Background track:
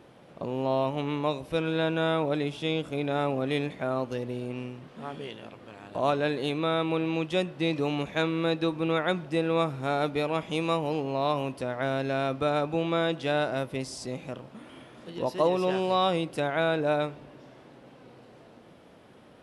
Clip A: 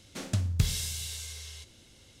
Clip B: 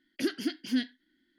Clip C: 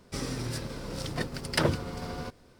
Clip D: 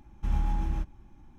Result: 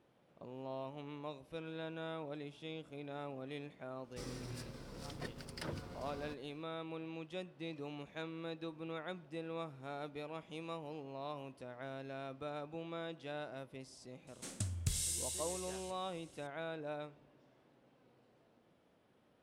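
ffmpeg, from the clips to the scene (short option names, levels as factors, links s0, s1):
-filter_complex "[0:a]volume=0.133[s0];[3:a]alimiter=limit=0.126:level=0:latency=1:release=105[s1];[1:a]equalizer=f=8700:w=1.4:g=13.5[s2];[s1]atrim=end=2.59,asetpts=PTS-STARTPTS,volume=0.224,afade=t=in:d=0.004:c=hsin,afade=t=out:st=2.586:d=0.004:c=hsin,adelay=4040[s3];[s2]atrim=end=2.2,asetpts=PTS-STARTPTS,volume=0.266,afade=t=in:d=0.004:c=hsin,afade=t=out:st=2.196:d=0.004:c=hsin,adelay=14270[s4];[s0][s3][s4]amix=inputs=3:normalize=0"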